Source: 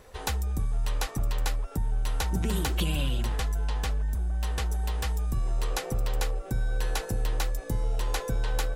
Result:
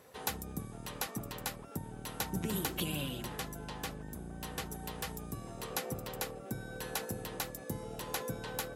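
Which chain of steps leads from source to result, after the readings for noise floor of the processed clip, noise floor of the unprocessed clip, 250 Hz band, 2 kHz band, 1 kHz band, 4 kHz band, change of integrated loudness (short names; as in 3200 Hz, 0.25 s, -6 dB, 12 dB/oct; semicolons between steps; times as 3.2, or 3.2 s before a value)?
-48 dBFS, -40 dBFS, -3.5 dB, -5.5 dB, -5.5 dB, -5.5 dB, -9.0 dB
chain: octaver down 1 oct, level -4 dB; Chebyshev high-pass 170 Hz, order 2; bell 12000 Hz +10 dB 0.32 oct; gain -4.5 dB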